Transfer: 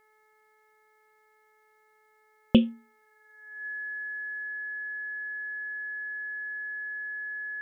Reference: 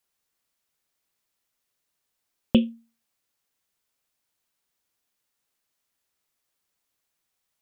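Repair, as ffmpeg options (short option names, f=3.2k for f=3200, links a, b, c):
-af "bandreject=f=430.6:t=h:w=4,bandreject=f=861.2:t=h:w=4,bandreject=f=1.2918k:t=h:w=4,bandreject=f=1.7224k:t=h:w=4,bandreject=f=2.153k:t=h:w=4,bandreject=f=1.7k:w=30,asetnsamples=n=441:p=0,asendcmd='4.43 volume volume 3.5dB',volume=0dB"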